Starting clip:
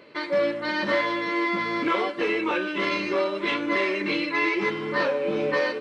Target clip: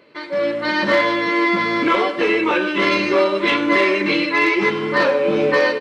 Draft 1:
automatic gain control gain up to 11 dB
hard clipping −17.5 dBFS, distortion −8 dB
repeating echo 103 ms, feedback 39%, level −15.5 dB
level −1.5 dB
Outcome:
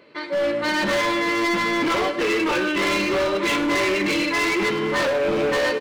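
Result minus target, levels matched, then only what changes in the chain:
hard clipping: distortion +27 dB
change: hard clipping −5.5 dBFS, distortion −35 dB

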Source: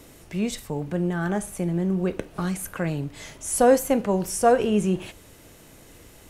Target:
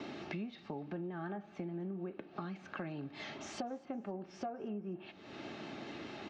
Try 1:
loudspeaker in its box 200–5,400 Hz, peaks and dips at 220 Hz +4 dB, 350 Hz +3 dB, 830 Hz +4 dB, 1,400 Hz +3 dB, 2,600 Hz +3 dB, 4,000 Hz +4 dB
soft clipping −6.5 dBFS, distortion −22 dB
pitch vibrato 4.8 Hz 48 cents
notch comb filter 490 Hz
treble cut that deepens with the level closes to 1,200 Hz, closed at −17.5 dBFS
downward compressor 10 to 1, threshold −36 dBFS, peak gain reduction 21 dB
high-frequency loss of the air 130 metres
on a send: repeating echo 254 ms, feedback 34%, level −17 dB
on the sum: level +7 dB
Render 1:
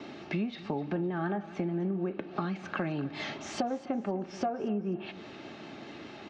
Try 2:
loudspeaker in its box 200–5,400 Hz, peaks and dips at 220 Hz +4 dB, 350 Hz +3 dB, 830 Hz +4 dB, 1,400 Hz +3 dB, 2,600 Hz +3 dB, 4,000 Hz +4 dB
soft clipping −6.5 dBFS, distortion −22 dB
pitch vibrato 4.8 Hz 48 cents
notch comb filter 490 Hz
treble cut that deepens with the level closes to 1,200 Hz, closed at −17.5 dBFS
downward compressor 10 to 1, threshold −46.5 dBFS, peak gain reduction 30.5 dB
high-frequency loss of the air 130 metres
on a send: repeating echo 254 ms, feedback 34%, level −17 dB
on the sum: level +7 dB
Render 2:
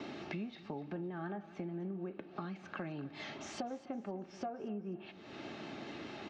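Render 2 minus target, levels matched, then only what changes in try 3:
echo-to-direct +6.5 dB
change: repeating echo 254 ms, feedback 34%, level −23.5 dB

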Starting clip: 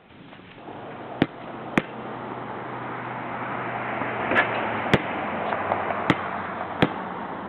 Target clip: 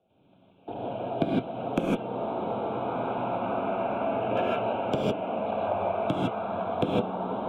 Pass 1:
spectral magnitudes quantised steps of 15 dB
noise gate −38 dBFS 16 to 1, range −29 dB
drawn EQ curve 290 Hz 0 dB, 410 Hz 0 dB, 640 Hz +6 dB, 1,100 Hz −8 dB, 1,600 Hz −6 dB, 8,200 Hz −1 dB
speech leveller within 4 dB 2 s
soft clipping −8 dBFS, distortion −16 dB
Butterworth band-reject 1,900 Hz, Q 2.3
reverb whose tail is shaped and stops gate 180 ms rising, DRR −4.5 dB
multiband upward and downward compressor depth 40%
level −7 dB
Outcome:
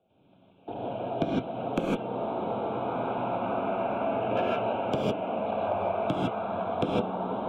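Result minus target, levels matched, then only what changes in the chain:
soft clipping: distortion +12 dB
change: soft clipping 0 dBFS, distortion −27 dB

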